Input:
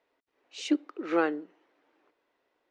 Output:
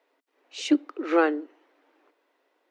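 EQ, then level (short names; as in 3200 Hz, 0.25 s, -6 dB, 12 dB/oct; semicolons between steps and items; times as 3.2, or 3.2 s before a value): elliptic high-pass 260 Hz; +5.5 dB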